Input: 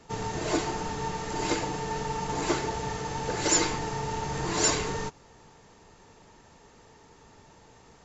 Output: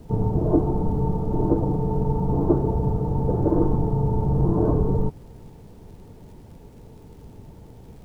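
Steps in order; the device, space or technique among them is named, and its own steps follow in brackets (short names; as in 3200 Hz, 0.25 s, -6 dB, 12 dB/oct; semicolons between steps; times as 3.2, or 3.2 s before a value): Bessel low-pass 580 Hz, order 8; vinyl LP (crackle; pink noise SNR 32 dB); low shelf 280 Hz +11.5 dB; gain +5.5 dB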